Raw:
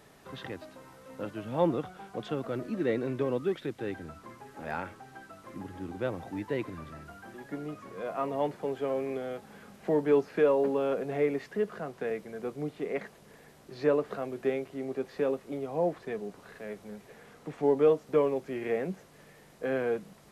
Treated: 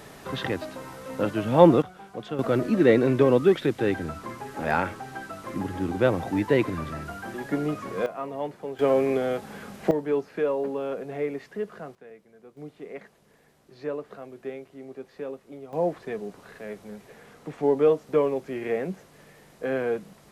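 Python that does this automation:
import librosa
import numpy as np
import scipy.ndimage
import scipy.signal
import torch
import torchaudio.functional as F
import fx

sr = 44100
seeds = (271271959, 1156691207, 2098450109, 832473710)

y = fx.gain(x, sr, db=fx.steps((0.0, 11.5), (1.82, 1.0), (2.39, 11.0), (8.06, -1.5), (8.79, 10.0), (9.91, -1.5), (11.95, -14.0), (12.57, -6.0), (15.73, 3.0)))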